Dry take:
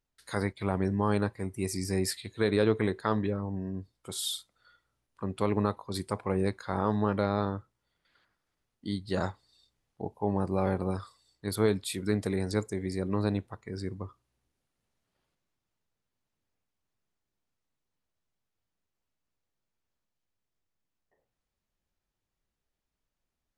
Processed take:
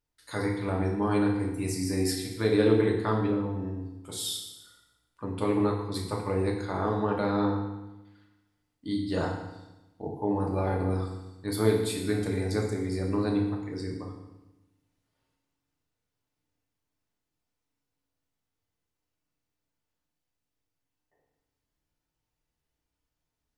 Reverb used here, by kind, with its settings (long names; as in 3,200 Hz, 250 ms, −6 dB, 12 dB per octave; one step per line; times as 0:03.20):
feedback delay network reverb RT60 1 s, low-frequency decay 1.25×, high-frequency decay 0.95×, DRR −1.5 dB
level −2.5 dB